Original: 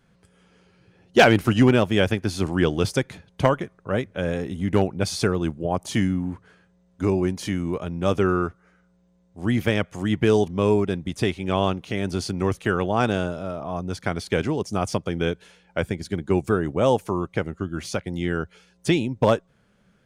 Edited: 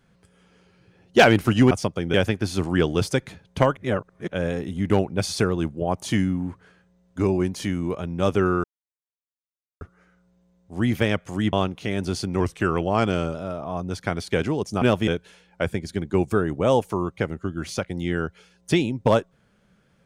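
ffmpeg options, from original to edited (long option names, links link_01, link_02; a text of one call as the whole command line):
ffmpeg -i in.wav -filter_complex "[0:a]asplit=11[link_01][link_02][link_03][link_04][link_05][link_06][link_07][link_08][link_09][link_10][link_11];[link_01]atrim=end=1.712[link_12];[link_02]atrim=start=14.808:end=15.242[link_13];[link_03]atrim=start=1.968:end=3.602[link_14];[link_04]atrim=start=3.598:end=4.112,asetpts=PTS-STARTPTS,areverse[link_15];[link_05]atrim=start=4.108:end=8.47,asetpts=PTS-STARTPTS,afade=type=out:start_time=4.358:duration=0.004:curve=hsin,apad=pad_dur=1.17[link_16];[link_06]atrim=start=8.47:end=10.192,asetpts=PTS-STARTPTS,afade=type=in:duration=0.004:curve=hsin[link_17];[link_07]atrim=start=11.588:end=12.464[link_18];[link_08]atrim=start=12.46:end=13.34,asetpts=PTS-STARTPTS,asetrate=41013,aresample=44100,atrim=end_sample=41729,asetpts=PTS-STARTPTS[link_19];[link_09]atrim=start=13.336:end=14.812[link_20];[link_10]atrim=start=1.708:end=1.972[link_21];[link_11]atrim=start=15.238[link_22];[link_12][link_13]acrossfade=duration=0.004:curve1=hsin:curve2=hsin[link_23];[link_23][link_14]acrossfade=duration=0.004:curve1=hsin:curve2=hsin[link_24];[link_24][link_15]acrossfade=duration=0.004:curve1=hsin:curve2=hsin[link_25];[link_16][link_17]concat=n=2:v=0:a=1[link_26];[link_25][link_26]acrossfade=duration=0.004:curve1=hsin:curve2=hsin[link_27];[link_27][link_18]acrossfade=duration=0.004:curve1=hsin:curve2=hsin[link_28];[link_28][link_19]acrossfade=duration=0.004:curve1=hsin:curve2=hsin[link_29];[link_29][link_20]acrossfade=duration=0.004:curve1=hsin:curve2=hsin[link_30];[link_30][link_21]acrossfade=duration=0.004:curve1=hsin:curve2=hsin[link_31];[link_31][link_22]acrossfade=duration=0.004:curve1=hsin:curve2=hsin" out.wav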